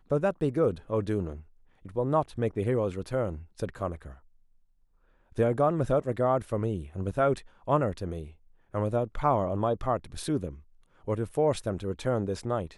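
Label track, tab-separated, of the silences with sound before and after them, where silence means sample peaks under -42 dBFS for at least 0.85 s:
4.140000	5.320000	silence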